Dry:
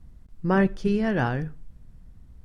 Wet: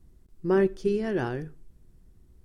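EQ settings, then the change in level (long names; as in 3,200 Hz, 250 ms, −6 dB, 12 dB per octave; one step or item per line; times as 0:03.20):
parametric band 370 Hz +13.5 dB 0.49 octaves
high-shelf EQ 5,000 Hz +11 dB
−8.0 dB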